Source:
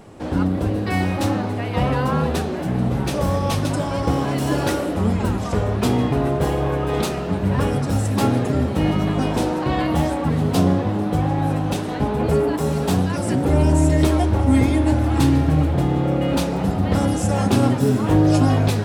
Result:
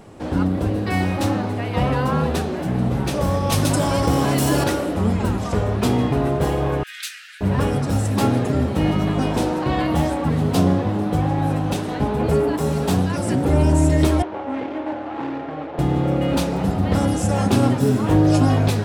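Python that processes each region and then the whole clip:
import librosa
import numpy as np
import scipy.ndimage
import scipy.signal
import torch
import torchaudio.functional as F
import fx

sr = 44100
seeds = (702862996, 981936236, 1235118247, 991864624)

y = fx.chain(x, sr, fx.high_shelf(hz=6400.0, db=10.5),
    fx.env_flatten(amount_pct=50), at=(3.52, 4.64))
y = fx.chain(y, sr, fx.steep_highpass(hz=1500.0, slope=72),
    fx.quant_float(bits=8), at=(6.83, 7.41))
y = fx.chain(y, sr, fx.median_filter(points=25),
    fx.bandpass_edges(low_hz=490.0, high_hz=2500.0), at=(14.22, 15.79))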